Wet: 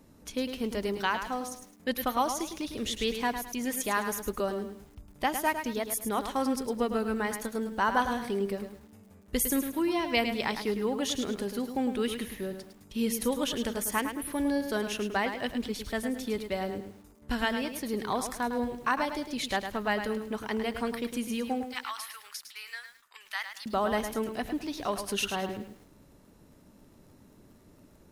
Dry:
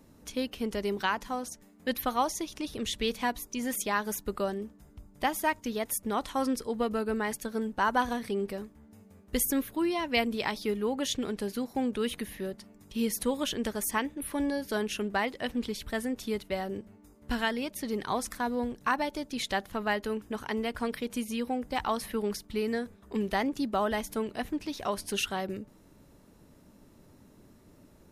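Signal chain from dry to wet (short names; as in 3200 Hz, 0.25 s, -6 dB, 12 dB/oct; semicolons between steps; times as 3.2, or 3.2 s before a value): 21.64–23.66 HPF 1200 Hz 24 dB/oct; lo-fi delay 0.106 s, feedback 35%, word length 9-bit, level -8 dB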